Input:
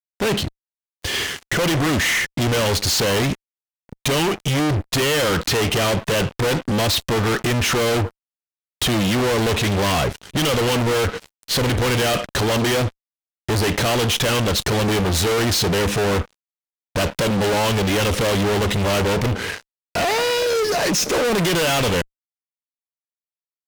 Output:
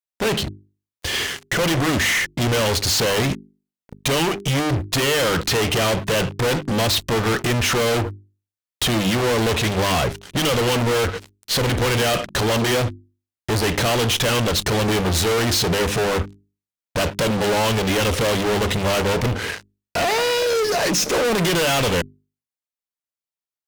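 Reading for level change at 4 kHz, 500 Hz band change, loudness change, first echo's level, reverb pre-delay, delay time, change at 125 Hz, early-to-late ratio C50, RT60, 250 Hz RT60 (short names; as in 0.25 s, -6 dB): 0.0 dB, 0.0 dB, -0.5 dB, none, none, none, -1.0 dB, none, none, none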